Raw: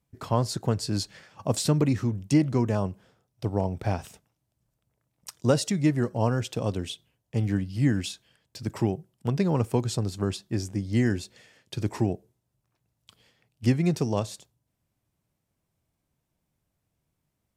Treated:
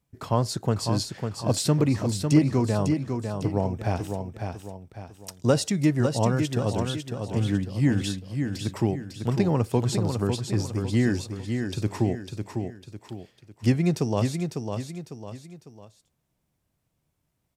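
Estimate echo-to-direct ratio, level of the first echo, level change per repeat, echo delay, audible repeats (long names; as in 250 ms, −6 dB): −5.5 dB, −6.0 dB, −8.0 dB, 551 ms, 3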